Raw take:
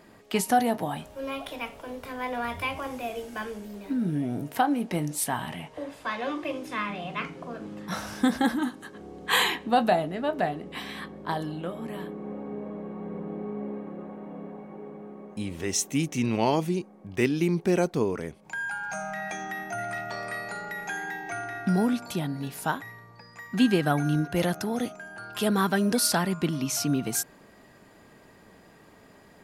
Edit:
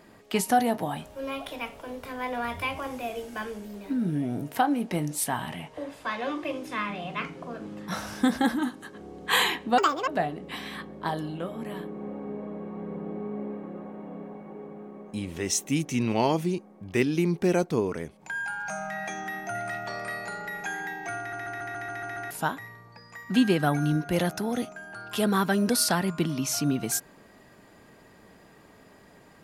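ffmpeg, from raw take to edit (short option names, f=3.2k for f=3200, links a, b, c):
-filter_complex "[0:a]asplit=11[a][b][c][d][e][f][g][h][i][j][k];[a]atrim=end=9.784[l];[b]atrim=start=9.78:end=10.31,asetpts=PTS-STARTPTS,asetrate=78939,aresample=44100[m];[c]atrim=start=10.306:end=21.562[n];[d]atrim=start=21.418:end=21.562[o];[e]atrim=start=21.418:end=21.562[p];[f]atrim=start=21.418:end=21.562[q];[g]atrim=start=21.418:end=21.562[r];[h]atrim=start=21.418:end=21.562[s];[i]atrim=start=21.418:end=21.562[t];[j]atrim=start=21.418:end=21.562[u];[k]atrim=start=22.538[v];[l][m]acrossfade=d=0.004:c1=hsin:c2=hsin[w];[w][n]acrossfade=d=0.004:c1=hsin:c2=hsin[x];[x][o]acrossfade=d=0.004:c1=hsin:c2=hsin[y];[y][p]acrossfade=d=0.004:c1=hsin:c2=hsin[z];[z][q]acrossfade=d=0.004:c1=hsin:c2=hsin[aa];[aa][r]acrossfade=d=0.004:c1=hsin:c2=hsin[ab];[ab][s]acrossfade=d=0.004:c1=hsin:c2=hsin[ac];[ac][t]acrossfade=d=0.004:c1=hsin:c2=hsin[ad];[ad][u]acrossfade=d=0.004:c1=hsin:c2=hsin[ae];[ae][v]acrossfade=d=0.004:c1=hsin:c2=hsin"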